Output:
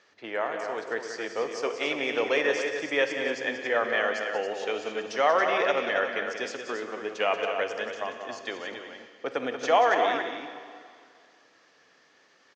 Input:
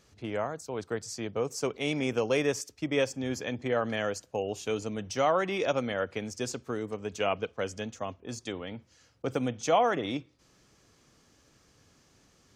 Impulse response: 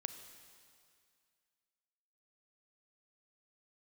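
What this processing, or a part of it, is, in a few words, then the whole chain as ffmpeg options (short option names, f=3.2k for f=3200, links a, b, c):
station announcement: -filter_complex "[0:a]highpass=470,lowpass=4.7k,equalizer=f=1.8k:t=o:w=0.3:g=8,aecho=1:1:183.7|277:0.355|0.398[a];[1:a]atrim=start_sample=2205[b];[a][b]afir=irnorm=-1:irlink=0,lowpass=6.6k,volume=6dB"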